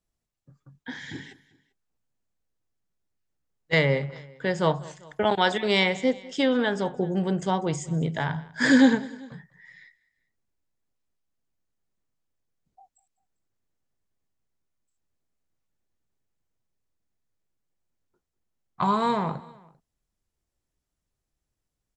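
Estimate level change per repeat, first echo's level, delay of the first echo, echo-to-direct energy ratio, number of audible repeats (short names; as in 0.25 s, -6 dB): -5.0 dB, -21.0 dB, 0.197 s, -20.0 dB, 2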